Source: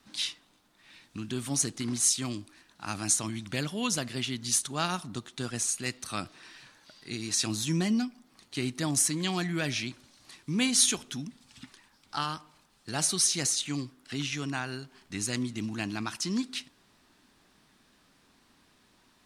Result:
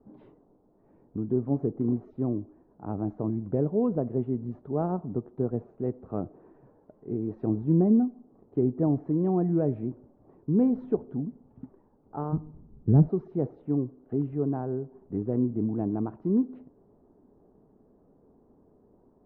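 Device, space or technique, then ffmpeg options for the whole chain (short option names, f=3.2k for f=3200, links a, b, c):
under water: -filter_complex "[0:a]asplit=3[a][b][c];[a]afade=t=out:st=12.32:d=0.02[d];[b]asubboost=boost=8.5:cutoff=200,afade=t=in:st=12.32:d=0.02,afade=t=out:st=13.07:d=0.02[e];[c]afade=t=in:st=13.07:d=0.02[f];[d][e][f]amix=inputs=3:normalize=0,lowpass=f=730:w=0.5412,lowpass=f=730:w=1.3066,equalizer=f=430:t=o:w=0.44:g=9,volume=5.5dB"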